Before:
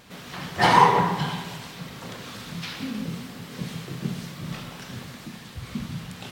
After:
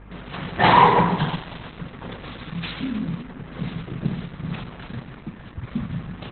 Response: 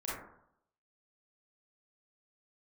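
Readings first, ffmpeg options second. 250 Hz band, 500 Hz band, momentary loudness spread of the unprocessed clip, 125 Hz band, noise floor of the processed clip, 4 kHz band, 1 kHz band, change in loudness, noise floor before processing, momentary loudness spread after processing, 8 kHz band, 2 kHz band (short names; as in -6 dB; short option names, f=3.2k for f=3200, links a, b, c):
+4.0 dB, +3.5 dB, 20 LU, +4.0 dB, -42 dBFS, +0.5 dB, +2.5 dB, +2.5 dB, -43 dBFS, 21 LU, under -40 dB, +2.0 dB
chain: -filter_complex "[0:a]acrossover=split=170|710|2300[a][b][c][d];[d]aeval=exprs='val(0)*gte(abs(val(0)),0.0075)':c=same[e];[a][b][c][e]amix=inputs=4:normalize=0,aeval=exprs='val(0)+0.00447*(sin(2*PI*50*n/s)+sin(2*PI*2*50*n/s)/2+sin(2*PI*3*50*n/s)/3+sin(2*PI*4*50*n/s)/4+sin(2*PI*5*50*n/s)/5)':c=same,acontrast=78,volume=-1.5dB" -ar 48000 -c:a libopus -b:a 8k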